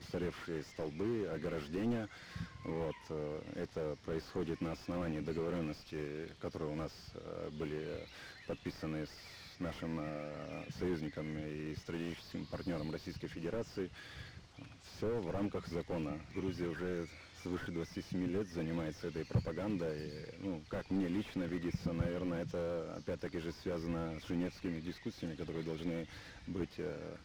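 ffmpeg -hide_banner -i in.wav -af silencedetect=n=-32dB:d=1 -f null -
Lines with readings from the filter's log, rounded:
silence_start: 13.84
silence_end: 15.02 | silence_duration: 1.18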